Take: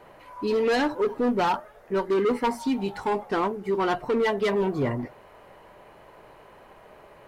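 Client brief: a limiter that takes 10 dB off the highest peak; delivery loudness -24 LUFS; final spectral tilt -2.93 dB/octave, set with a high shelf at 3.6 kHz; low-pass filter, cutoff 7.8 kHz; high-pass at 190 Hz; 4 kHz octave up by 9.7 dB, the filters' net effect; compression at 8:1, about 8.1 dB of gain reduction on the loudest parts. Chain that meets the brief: high-pass 190 Hz; low-pass 7.8 kHz; treble shelf 3.6 kHz +6.5 dB; peaking EQ 4 kHz +8.5 dB; compression 8:1, threshold -27 dBFS; trim +12 dB; peak limiter -15 dBFS

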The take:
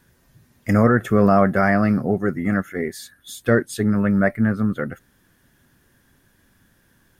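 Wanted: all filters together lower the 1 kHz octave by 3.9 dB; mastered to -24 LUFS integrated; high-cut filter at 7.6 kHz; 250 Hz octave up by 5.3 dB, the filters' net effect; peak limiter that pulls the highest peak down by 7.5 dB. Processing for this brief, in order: low-pass 7.6 kHz; peaking EQ 250 Hz +7 dB; peaking EQ 1 kHz -7 dB; trim -6 dB; peak limiter -13 dBFS

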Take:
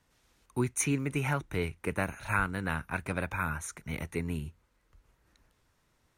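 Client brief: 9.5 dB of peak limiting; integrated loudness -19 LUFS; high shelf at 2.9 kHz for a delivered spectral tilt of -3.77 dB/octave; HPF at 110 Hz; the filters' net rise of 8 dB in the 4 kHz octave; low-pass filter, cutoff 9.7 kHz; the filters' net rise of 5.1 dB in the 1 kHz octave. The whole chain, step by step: high-pass 110 Hz; low-pass 9.7 kHz; peaking EQ 1 kHz +5 dB; treble shelf 2.9 kHz +8.5 dB; peaking EQ 4 kHz +4 dB; trim +13.5 dB; peak limiter -5.5 dBFS

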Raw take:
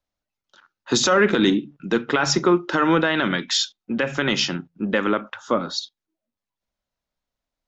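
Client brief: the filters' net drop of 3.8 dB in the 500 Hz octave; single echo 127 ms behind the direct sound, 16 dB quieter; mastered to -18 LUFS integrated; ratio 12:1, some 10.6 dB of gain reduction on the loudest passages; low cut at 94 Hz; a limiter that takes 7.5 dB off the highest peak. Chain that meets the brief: high-pass 94 Hz; peaking EQ 500 Hz -5 dB; compression 12:1, threshold -25 dBFS; peak limiter -20 dBFS; delay 127 ms -16 dB; trim +13.5 dB

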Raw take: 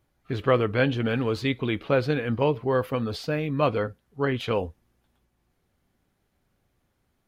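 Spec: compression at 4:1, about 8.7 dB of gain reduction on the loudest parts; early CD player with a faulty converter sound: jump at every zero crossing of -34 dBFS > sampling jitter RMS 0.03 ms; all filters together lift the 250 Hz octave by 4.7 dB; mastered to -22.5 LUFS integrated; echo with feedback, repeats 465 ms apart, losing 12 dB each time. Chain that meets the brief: peaking EQ 250 Hz +5.5 dB; compression 4:1, threshold -26 dBFS; feedback delay 465 ms, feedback 25%, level -12 dB; jump at every zero crossing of -34 dBFS; sampling jitter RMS 0.03 ms; trim +6.5 dB

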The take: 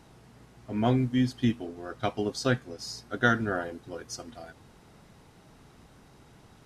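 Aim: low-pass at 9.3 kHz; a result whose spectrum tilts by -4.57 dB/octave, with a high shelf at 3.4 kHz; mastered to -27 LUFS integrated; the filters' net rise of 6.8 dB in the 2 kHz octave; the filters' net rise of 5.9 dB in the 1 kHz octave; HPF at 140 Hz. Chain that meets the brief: high-pass 140 Hz; low-pass 9.3 kHz; peaking EQ 1 kHz +6.5 dB; peaking EQ 2 kHz +5.5 dB; treble shelf 3.4 kHz +4 dB

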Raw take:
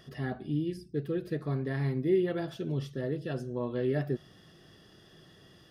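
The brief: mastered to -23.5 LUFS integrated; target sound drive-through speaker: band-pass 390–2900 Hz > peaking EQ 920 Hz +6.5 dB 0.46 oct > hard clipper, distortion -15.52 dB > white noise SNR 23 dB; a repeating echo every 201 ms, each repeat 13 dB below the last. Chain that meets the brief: band-pass 390–2900 Hz; peaking EQ 920 Hz +6.5 dB 0.46 oct; feedback delay 201 ms, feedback 22%, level -13 dB; hard clipper -28 dBFS; white noise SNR 23 dB; trim +14 dB

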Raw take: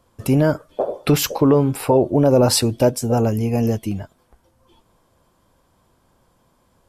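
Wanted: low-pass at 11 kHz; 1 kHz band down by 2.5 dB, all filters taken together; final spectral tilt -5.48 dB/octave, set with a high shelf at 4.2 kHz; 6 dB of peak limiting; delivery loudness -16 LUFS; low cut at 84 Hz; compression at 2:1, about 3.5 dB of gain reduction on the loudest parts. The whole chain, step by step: high-pass 84 Hz; low-pass 11 kHz; peaking EQ 1 kHz -3.5 dB; treble shelf 4.2 kHz +3 dB; compression 2:1, threshold -17 dBFS; trim +6.5 dB; peak limiter -5.5 dBFS

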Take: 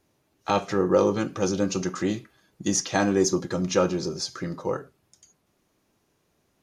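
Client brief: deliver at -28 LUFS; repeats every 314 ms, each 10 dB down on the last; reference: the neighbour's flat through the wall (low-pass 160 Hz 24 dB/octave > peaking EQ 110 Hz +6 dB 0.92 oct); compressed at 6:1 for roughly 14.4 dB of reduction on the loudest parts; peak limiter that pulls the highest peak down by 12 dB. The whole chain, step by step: compression 6:1, threshold -32 dBFS; peak limiter -30.5 dBFS; low-pass 160 Hz 24 dB/octave; peaking EQ 110 Hz +6 dB 0.92 oct; feedback delay 314 ms, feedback 32%, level -10 dB; trim +20.5 dB

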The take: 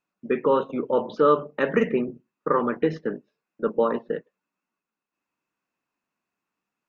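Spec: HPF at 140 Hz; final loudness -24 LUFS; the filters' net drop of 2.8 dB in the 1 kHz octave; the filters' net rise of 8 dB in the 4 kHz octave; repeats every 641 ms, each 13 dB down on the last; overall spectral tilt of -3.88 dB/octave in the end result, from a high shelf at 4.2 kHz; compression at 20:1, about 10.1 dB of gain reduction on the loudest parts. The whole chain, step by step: high-pass 140 Hz; peaking EQ 1 kHz -4.5 dB; peaking EQ 4 kHz +7.5 dB; treble shelf 4.2 kHz +7.5 dB; compression 20:1, threshold -25 dBFS; feedback delay 641 ms, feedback 22%, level -13 dB; trim +8.5 dB

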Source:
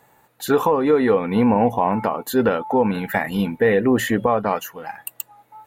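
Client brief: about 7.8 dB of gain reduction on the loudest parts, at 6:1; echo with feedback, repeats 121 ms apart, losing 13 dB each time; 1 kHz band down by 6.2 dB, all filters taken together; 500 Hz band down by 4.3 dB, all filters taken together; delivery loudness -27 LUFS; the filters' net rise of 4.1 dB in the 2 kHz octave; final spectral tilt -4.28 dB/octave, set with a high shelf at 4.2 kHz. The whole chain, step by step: peaking EQ 500 Hz -3.5 dB; peaking EQ 1 kHz -8.5 dB; peaking EQ 2 kHz +6.5 dB; treble shelf 4.2 kHz +5 dB; compression 6:1, threshold -23 dBFS; feedback delay 121 ms, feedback 22%, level -13 dB; trim +0.5 dB

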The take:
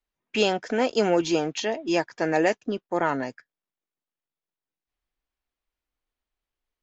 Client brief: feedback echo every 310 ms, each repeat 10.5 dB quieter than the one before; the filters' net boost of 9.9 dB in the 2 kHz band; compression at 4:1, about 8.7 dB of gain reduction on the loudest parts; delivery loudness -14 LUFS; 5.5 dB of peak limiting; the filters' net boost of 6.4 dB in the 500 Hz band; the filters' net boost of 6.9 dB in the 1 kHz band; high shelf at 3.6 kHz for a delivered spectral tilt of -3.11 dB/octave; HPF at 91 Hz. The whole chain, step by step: high-pass 91 Hz; peaking EQ 500 Hz +6 dB; peaking EQ 1 kHz +4.5 dB; peaking EQ 2 kHz +8.5 dB; treble shelf 3.6 kHz +8.5 dB; compression 4:1, threshold -21 dBFS; peak limiter -16 dBFS; feedback delay 310 ms, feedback 30%, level -10.5 dB; trim +13 dB

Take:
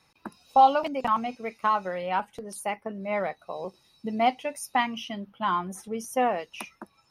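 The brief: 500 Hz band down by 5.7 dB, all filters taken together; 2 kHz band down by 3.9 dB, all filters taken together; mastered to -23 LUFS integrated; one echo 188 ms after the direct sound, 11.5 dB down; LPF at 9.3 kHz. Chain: low-pass 9.3 kHz; peaking EQ 500 Hz -7 dB; peaking EQ 2 kHz -4.5 dB; delay 188 ms -11.5 dB; trim +7.5 dB

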